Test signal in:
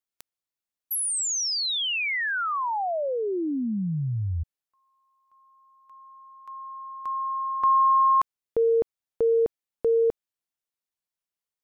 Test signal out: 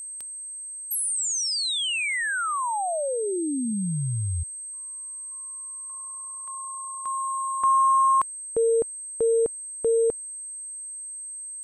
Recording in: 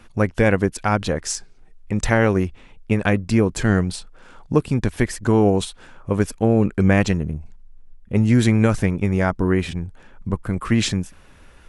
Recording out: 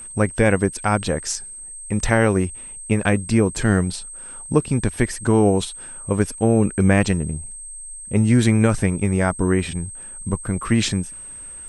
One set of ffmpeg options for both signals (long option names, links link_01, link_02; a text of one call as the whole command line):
ffmpeg -i in.wav -af "aeval=exprs='val(0)+0.02*sin(2*PI*8300*n/s)':channel_layout=same" out.wav